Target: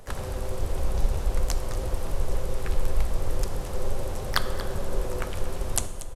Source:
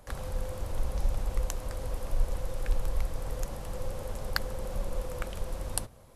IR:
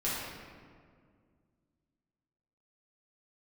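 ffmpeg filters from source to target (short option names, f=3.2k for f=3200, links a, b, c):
-filter_complex "[0:a]asplit=3[a][b][c];[b]asetrate=33038,aresample=44100,atempo=1.33484,volume=-3dB[d];[c]asetrate=52444,aresample=44100,atempo=0.840896,volume=-13dB[e];[a][d][e]amix=inputs=3:normalize=0,aecho=1:1:235:0.188,asplit=2[f][g];[1:a]atrim=start_sample=2205,asetrate=29988,aresample=44100[h];[g][h]afir=irnorm=-1:irlink=0,volume=-18dB[i];[f][i]amix=inputs=2:normalize=0,volume=2.5dB"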